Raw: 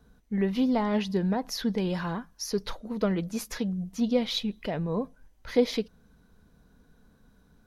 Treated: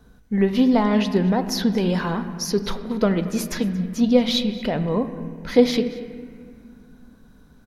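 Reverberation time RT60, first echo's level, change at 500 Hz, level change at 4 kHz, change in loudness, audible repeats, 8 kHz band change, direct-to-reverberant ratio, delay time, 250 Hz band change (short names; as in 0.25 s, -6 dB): 2.2 s, -21.0 dB, +7.5 dB, +7.5 dB, +8.0 dB, 1, +7.0 dB, 8.5 dB, 0.229 s, +8.0 dB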